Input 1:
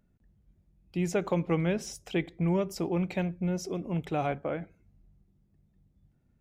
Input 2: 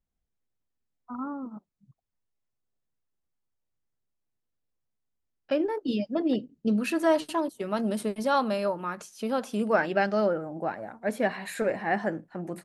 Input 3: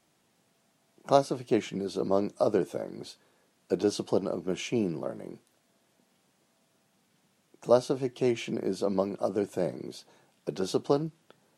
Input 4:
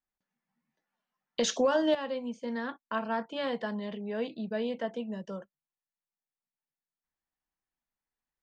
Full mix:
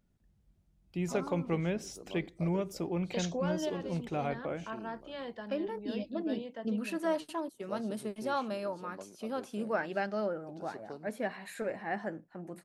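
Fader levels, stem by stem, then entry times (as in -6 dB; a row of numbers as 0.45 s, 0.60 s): -4.5 dB, -8.5 dB, -20.0 dB, -9.0 dB; 0.00 s, 0.00 s, 0.00 s, 1.75 s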